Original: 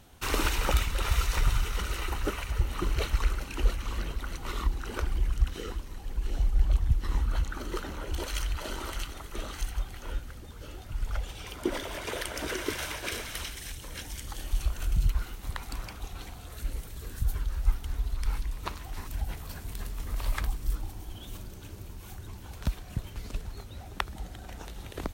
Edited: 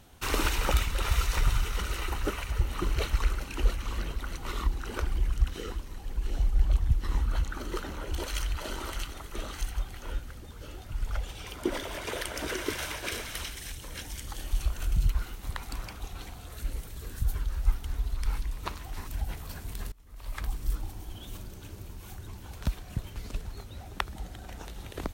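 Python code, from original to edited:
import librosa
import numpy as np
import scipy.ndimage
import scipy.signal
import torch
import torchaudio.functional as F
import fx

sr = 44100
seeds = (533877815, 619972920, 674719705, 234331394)

y = fx.edit(x, sr, fx.fade_in_from(start_s=19.92, length_s=0.64, curve='qua', floor_db=-23.0), tone=tone)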